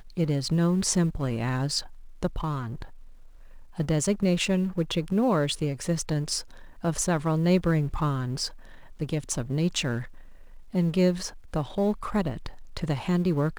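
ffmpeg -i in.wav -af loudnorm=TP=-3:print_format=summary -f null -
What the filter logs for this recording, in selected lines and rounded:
Input Integrated:    -27.2 LUFS
Input True Peak:     -11.0 dBTP
Input LRA:             2.8 LU
Input Threshold:     -37.8 LUFS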